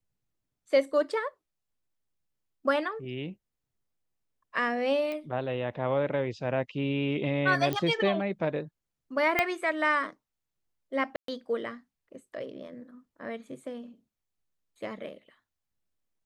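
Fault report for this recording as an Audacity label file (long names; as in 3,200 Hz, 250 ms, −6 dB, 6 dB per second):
5.120000	5.120000	click −24 dBFS
7.730000	7.730000	click −16 dBFS
9.390000	9.390000	click −10 dBFS
11.160000	11.280000	drop-out 123 ms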